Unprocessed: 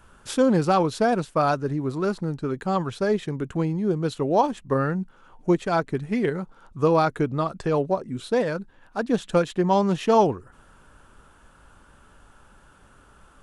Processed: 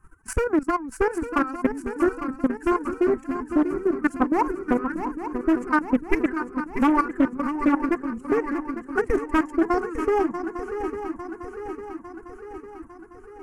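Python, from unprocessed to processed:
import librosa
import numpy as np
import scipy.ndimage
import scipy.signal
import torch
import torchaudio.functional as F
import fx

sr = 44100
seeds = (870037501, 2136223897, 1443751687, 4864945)

p1 = fx.dereverb_blind(x, sr, rt60_s=1.5)
p2 = fx.peak_eq(p1, sr, hz=3900.0, db=-14.0, octaves=1.5)
p3 = fx.pitch_keep_formants(p2, sr, semitones=10.5)
p4 = fx.rider(p3, sr, range_db=4, speed_s=2.0)
p5 = p3 + (p4 * librosa.db_to_amplitude(-2.0))
p6 = fx.transient(p5, sr, attack_db=8, sustain_db=-4)
p7 = np.clip(p6, -10.0 ** (-7.5 / 20.0), 10.0 ** (-7.5 / 20.0))
p8 = fx.level_steps(p7, sr, step_db=16)
p9 = fx.fixed_phaser(p8, sr, hz=1500.0, stages=4)
p10 = p9 + fx.echo_swing(p9, sr, ms=852, ratio=3, feedback_pct=57, wet_db=-9.0, dry=0)
p11 = fx.doppler_dist(p10, sr, depth_ms=0.31)
y = p11 * librosa.db_to_amplitude(2.5)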